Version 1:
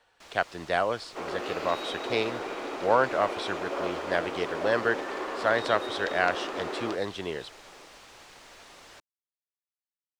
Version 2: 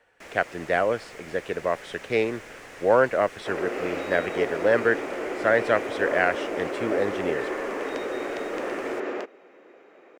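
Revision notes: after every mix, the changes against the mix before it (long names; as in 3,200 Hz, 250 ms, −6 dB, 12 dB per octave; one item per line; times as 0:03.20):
first sound +5.0 dB
second sound: entry +2.30 s
master: add graphic EQ with 10 bands 125 Hz +3 dB, 250 Hz +4 dB, 500 Hz +6 dB, 1,000 Hz −4 dB, 2,000 Hz +8 dB, 4,000 Hz −9 dB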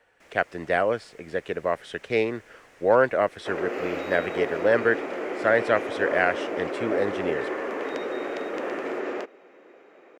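first sound −11.0 dB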